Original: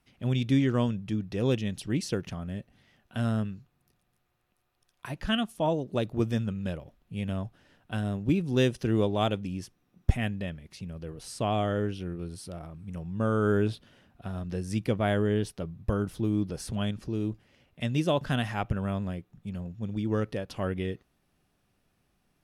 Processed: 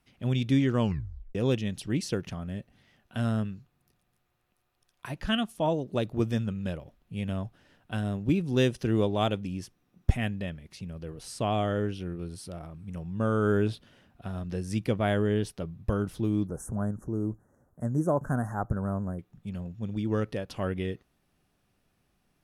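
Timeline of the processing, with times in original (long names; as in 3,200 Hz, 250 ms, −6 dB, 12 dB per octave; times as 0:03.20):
0:00.80: tape stop 0.55 s
0:16.47–0:19.19: inverse Chebyshev band-stop filter 2,200–4,800 Hz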